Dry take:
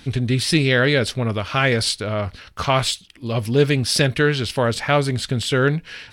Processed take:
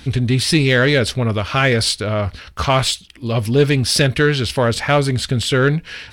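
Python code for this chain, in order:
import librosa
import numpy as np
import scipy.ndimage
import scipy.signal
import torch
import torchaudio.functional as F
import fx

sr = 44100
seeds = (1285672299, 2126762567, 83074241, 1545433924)

p1 = fx.peak_eq(x, sr, hz=67.0, db=9.5, octaves=0.47)
p2 = 10.0 ** (-16.5 / 20.0) * np.tanh(p1 / 10.0 ** (-16.5 / 20.0))
y = p1 + F.gain(torch.from_numpy(p2), -4.5).numpy()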